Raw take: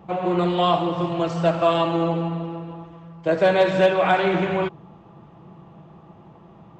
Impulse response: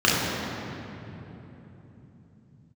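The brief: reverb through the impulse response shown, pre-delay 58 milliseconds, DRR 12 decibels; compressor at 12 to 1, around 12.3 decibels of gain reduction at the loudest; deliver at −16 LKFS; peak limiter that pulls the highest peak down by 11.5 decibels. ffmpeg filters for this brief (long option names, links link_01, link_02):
-filter_complex "[0:a]acompressor=threshold=-25dB:ratio=12,alimiter=level_in=2.5dB:limit=-24dB:level=0:latency=1,volume=-2.5dB,asplit=2[link_01][link_02];[1:a]atrim=start_sample=2205,adelay=58[link_03];[link_02][link_03]afir=irnorm=-1:irlink=0,volume=-33dB[link_04];[link_01][link_04]amix=inputs=2:normalize=0,volume=19.5dB"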